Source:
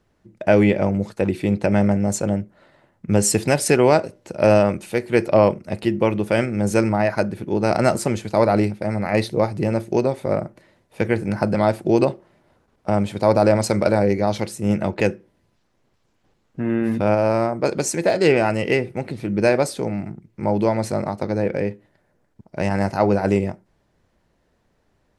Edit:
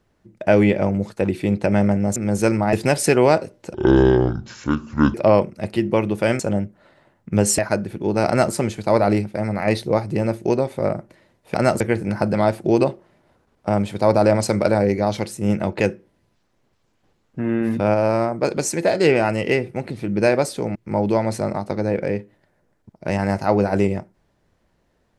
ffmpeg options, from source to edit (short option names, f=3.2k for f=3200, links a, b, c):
-filter_complex "[0:a]asplit=10[a][b][c][d][e][f][g][h][i][j];[a]atrim=end=2.162[k];[b]atrim=start=6.478:end=7.052[l];[c]atrim=start=3.348:end=4.364[m];[d]atrim=start=4.36:end=5.23,asetpts=PTS-STARTPTS,asetrate=27342,aresample=44100,atrim=end_sample=61882,asetpts=PTS-STARTPTS[n];[e]atrim=start=5.226:end=6.482[o];[f]atrim=start=2.158:end=3.352[p];[g]atrim=start=7.048:end=11.012[q];[h]atrim=start=7.738:end=8.002[r];[i]atrim=start=11.008:end=19.962[s];[j]atrim=start=20.268[t];[k][l]acrossfade=d=0.004:c1=hsin:c2=hsin[u];[u][m]acrossfade=d=0.004:c1=hsin:c2=hsin[v];[v][n]acrossfade=d=0.004:c1=hsin:c2=hsin[w];[w][o]acrossfade=d=0.004:c1=hsin:c2=hsin[x];[x][p]acrossfade=d=0.004:c1=hsin:c2=hsin[y];[y][q]acrossfade=d=0.004:c1=hsin:c2=hsin[z];[z][r]acrossfade=d=0.004:c1=hsin:c2=hsin[aa];[aa][s]acrossfade=d=0.004:c1=hsin:c2=hsin[ab];[ab][t]acrossfade=d=0.004:c1=hsin:c2=hsin"